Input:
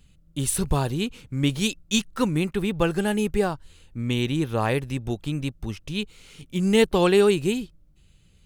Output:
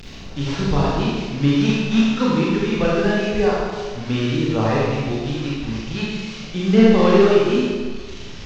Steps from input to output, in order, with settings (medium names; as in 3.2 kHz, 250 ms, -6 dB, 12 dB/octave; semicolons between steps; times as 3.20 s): one-bit delta coder 32 kbps, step -33 dBFS; reverb removal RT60 1.2 s; Schroeder reverb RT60 1.6 s, combs from 28 ms, DRR -6.5 dB